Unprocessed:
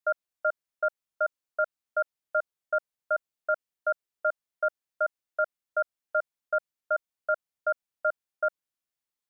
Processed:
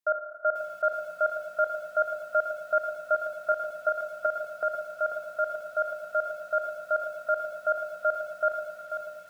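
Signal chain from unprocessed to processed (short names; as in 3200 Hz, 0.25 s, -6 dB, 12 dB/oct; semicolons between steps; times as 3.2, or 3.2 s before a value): Schroeder reverb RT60 3.5 s, combs from 28 ms, DRR 5.5 dB; tremolo saw up 5.4 Hz, depth 45%; lo-fi delay 0.489 s, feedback 35%, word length 9-bit, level -8 dB; gain +2.5 dB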